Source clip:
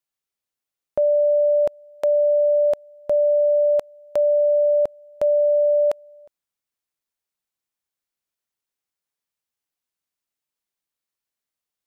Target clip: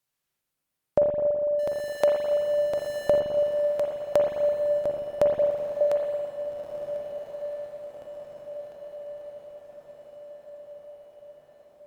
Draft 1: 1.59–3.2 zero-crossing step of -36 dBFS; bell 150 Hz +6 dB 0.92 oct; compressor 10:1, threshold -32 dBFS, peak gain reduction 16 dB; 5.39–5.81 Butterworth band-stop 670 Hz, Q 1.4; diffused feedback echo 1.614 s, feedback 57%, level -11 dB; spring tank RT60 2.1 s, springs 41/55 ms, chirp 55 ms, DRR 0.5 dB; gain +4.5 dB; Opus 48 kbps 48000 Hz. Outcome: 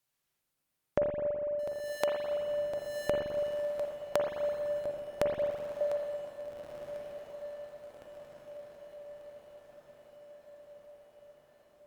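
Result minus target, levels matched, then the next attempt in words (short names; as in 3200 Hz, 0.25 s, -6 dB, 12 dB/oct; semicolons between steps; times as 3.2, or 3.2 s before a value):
compressor: peak gain reduction +8.5 dB
1.59–3.2 zero-crossing step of -36 dBFS; bell 150 Hz +6 dB 0.92 oct; compressor 10:1, threshold -22.5 dBFS, peak gain reduction 7.5 dB; 5.39–5.81 Butterworth band-stop 670 Hz, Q 1.4; diffused feedback echo 1.614 s, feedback 57%, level -11 dB; spring tank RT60 2.1 s, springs 41/55 ms, chirp 55 ms, DRR 0.5 dB; gain +4.5 dB; Opus 48 kbps 48000 Hz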